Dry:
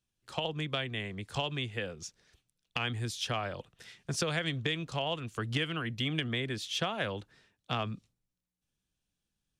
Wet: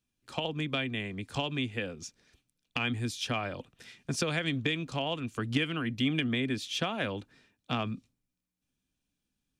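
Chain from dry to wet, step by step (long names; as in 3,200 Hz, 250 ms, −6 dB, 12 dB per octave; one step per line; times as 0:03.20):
hollow resonant body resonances 260/2,400 Hz, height 10 dB, ringing for 45 ms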